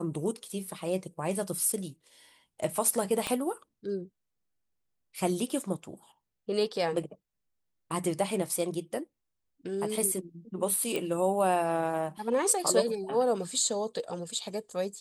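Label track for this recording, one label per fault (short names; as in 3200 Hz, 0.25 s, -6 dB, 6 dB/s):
3.270000	3.270000	pop -16 dBFS
10.960000	10.960000	pop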